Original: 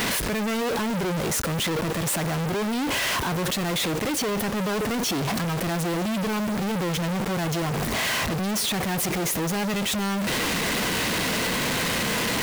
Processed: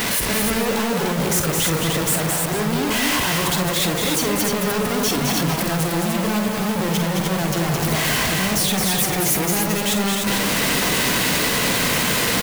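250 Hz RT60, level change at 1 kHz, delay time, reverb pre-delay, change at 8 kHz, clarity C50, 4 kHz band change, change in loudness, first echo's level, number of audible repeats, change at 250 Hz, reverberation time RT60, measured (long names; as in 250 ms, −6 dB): no reverb audible, +4.5 dB, 48 ms, no reverb audible, +7.5 dB, no reverb audible, +5.5 dB, +6.0 dB, −8.0 dB, 4, +4.5 dB, no reverb audible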